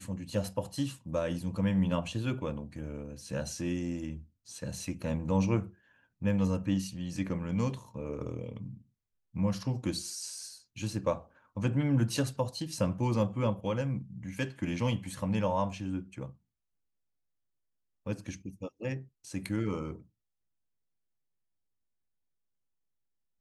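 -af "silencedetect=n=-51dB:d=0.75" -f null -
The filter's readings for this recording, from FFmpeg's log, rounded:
silence_start: 16.33
silence_end: 18.06 | silence_duration: 1.73
silence_start: 20.02
silence_end: 23.41 | silence_duration: 3.38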